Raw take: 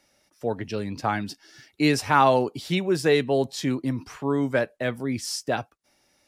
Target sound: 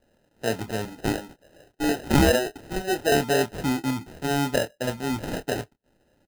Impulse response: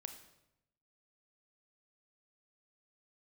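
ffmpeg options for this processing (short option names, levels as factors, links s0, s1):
-filter_complex "[0:a]asettb=1/sr,asplit=3[s0][s1][s2];[s0]atrim=end=0.854[s3];[s1]atrim=start=0.85:end=3.12,asetpts=PTS-STARTPTS,afade=t=in:d=0.004:c=qsin,afade=t=out:st=2.266:d=0.004:c=qsin,acrossover=split=290 3600:gain=0.0891 1 0.2[s4][s5][s6];[s4][s5][s6]amix=inputs=3:normalize=0[s7];[s2]atrim=start=3.116[s8];[s3][s7]acrossfade=d=0.004:c1=hsin:c2=qsin[s9];[s9][s8]acrossfade=d=0.004:c1=qsin:c2=hsin,acrusher=samples=39:mix=1:aa=0.000001,asplit=2[s10][s11];[s11]adelay=27,volume=0.299[s12];[s10][s12]amix=inputs=2:normalize=0"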